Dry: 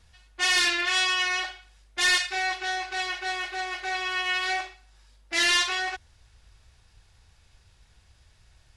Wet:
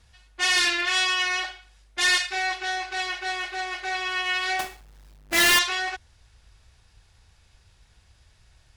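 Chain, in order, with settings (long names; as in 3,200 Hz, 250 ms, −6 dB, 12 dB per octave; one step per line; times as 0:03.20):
0:04.59–0:05.59: each half-wave held at its own peak
harmonic generator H 8 −43 dB, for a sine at −15.5 dBFS
level +1 dB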